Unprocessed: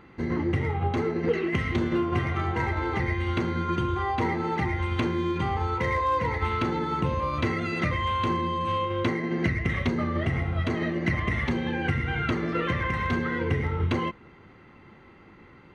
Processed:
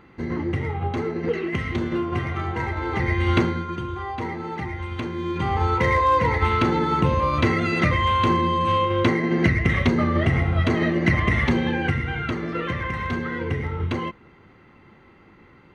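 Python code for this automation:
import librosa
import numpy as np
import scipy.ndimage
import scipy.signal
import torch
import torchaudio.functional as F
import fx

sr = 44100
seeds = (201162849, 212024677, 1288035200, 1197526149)

y = fx.gain(x, sr, db=fx.line((2.79, 0.5), (3.38, 8.5), (3.68, -3.0), (5.11, -3.0), (5.64, 6.5), (11.59, 6.5), (12.22, 0.0)))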